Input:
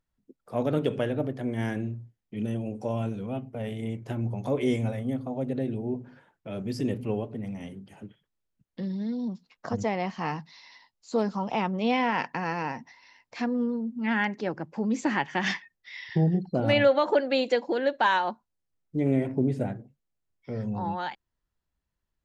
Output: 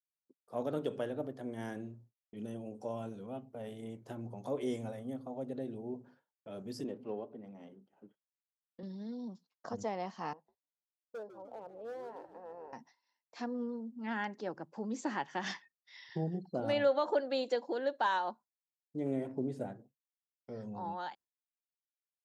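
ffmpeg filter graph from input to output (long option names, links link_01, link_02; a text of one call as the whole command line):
ffmpeg -i in.wav -filter_complex "[0:a]asettb=1/sr,asplit=3[link_01][link_02][link_03];[link_01]atrim=end=6.844[link_04];[link_02]atrim=start=6.84:end=8.83,asetpts=PTS-STARTPTS,afade=type=in:duration=0.004:curve=qsin,afade=type=out:start_time=1.986:duration=0.004:curve=qsin,highpass=200,bandreject=frequency=1800:width=28,adynamicsmooth=sensitivity=3:basefreq=2700[link_05];[link_03]atrim=start=8.826[link_06];[link_04][link_05]acrossfade=duration=0.004:curve1=hsin:curve2=qsin[link_07];[link_07][link_06]acrossfade=duration=0.004:curve1=qsin:curve2=hsin,asettb=1/sr,asplit=3[link_08][link_09][link_10];[link_08]atrim=end=10.334[link_11];[link_09]atrim=start=10.33:end=12.73,asetpts=PTS-STARTPTS,afade=type=in:duration=0.004:curve=qsin,afade=type=out:start_time=2.396:duration=0.004:curve=qsin,bandpass=frequency=520:width_type=q:width=4.5,asoftclip=type=hard:threshold=-31.5dB,asplit=6[link_12][link_13][link_14][link_15][link_16][link_17];[link_13]adelay=150,afreqshift=-94,volume=-11.5dB[link_18];[link_14]adelay=300,afreqshift=-188,volume=-17.3dB[link_19];[link_15]adelay=450,afreqshift=-282,volume=-23.2dB[link_20];[link_16]adelay=600,afreqshift=-376,volume=-29dB[link_21];[link_17]adelay=750,afreqshift=-470,volume=-34.9dB[link_22];[link_12][link_18][link_19][link_20][link_21][link_22]amix=inputs=6:normalize=0,atrim=end_sample=105840[link_23];[link_10]atrim=start=12.726[link_24];[link_11][link_23]acrossfade=duration=0.004:curve1=hsin:curve2=qsin[link_25];[link_25][link_24]acrossfade=duration=0.004:curve1=qsin:curve2=hsin,highpass=frequency=370:poles=1,equalizer=frequency=2300:width=1.6:gain=-10,agate=range=-33dB:threshold=-49dB:ratio=3:detection=peak,volume=-6dB" out.wav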